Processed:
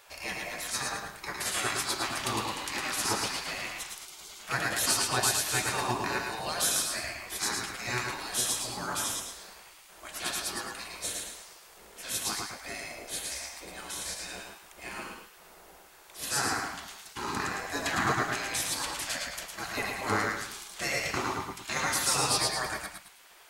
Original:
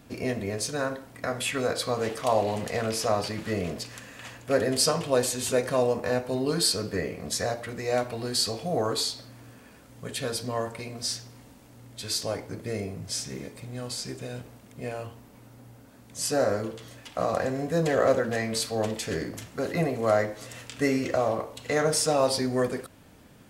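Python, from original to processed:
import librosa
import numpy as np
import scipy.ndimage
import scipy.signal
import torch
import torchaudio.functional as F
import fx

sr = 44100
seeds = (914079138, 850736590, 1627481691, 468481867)

y = fx.echo_thinned(x, sr, ms=105, feedback_pct=35, hz=380.0, wet_db=-6)
y = fx.spec_gate(y, sr, threshold_db=-15, keep='weak')
y = y + 10.0 ** (-5.5 / 20.0) * np.pad(y, (int(115 * sr / 1000.0), 0))[:len(y)]
y = y * 10.0 ** (4.0 / 20.0)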